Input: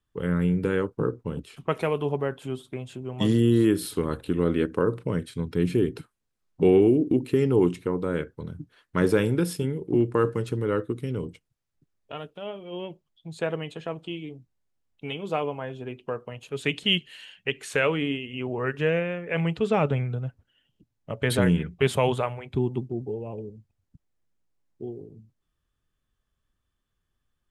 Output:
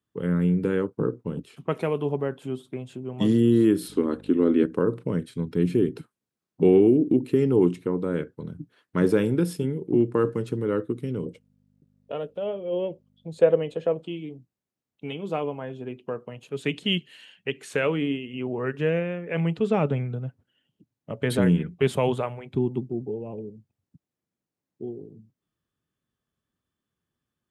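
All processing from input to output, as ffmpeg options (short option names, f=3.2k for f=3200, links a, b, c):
-filter_complex "[0:a]asettb=1/sr,asplit=3[a][b][c];[a]atrim=end=3.884[d];[b]atrim=start=3.88:end=4.63,asetpts=PTS-STARTPTS,afade=t=in:d=0.004:c=qsin,afade=t=out:st=0.746:d=0.004:c=qsin,lowpass=7.9k,lowshelf=f=200:t=q:w=3:g=-7,aeval=exprs='val(0)+0.00794*(sin(2*PI*50*n/s)+sin(2*PI*2*50*n/s)/2+sin(2*PI*3*50*n/s)/3+sin(2*PI*4*50*n/s)/4+sin(2*PI*5*50*n/s)/5)':c=same[e];[c]atrim=start=4.626[f];[d][e]acrossfade=d=0.004:c1=hsin:c2=qsin[g];[g][f]acrossfade=d=0.004:c1=qsin:c2=hsin,asettb=1/sr,asplit=3[h][i][j];[h]atrim=end=11.264[k];[i]atrim=start=11.26:end=14.02,asetpts=PTS-STARTPTS,afade=t=in:d=0.004:c=qsin,afade=t=out:st=2.756:d=0.004:c=qsin,equalizer=f=520:w=2.6:g=14,aeval=exprs='val(0)+0.00112*(sin(2*PI*50*n/s)+sin(2*PI*2*50*n/s)/2+sin(2*PI*3*50*n/s)/3+sin(2*PI*4*50*n/s)/4+sin(2*PI*5*50*n/s)/5)':c=same[l];[j]atrim=start=14.016[m];[k][l]acrossfade=d=0.004:c1=hsin:c2=qsin[n];[n][m]acrossfade=d=0.004:c1=qsin:c2=hsin,highpass=180,lowshelf=f=360:g=11,volume=-4dB"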